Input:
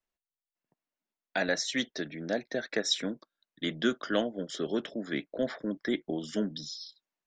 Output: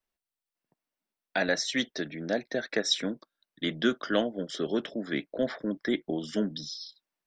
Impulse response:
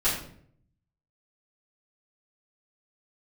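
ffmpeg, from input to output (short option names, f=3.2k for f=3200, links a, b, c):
-af "bandreject=f=6.8k:w=8.2,volume=2dB"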